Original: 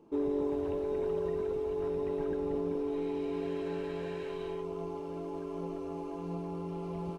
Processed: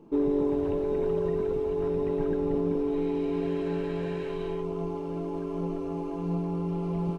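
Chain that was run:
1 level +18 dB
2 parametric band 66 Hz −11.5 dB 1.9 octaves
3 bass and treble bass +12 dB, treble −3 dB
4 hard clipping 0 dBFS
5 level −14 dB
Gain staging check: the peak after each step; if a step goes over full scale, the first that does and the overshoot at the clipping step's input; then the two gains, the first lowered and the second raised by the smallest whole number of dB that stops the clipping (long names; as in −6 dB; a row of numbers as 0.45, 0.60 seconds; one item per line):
−3.5, −5.0, −2.0, −2.0, −16.0 dBFS
no step passes full scale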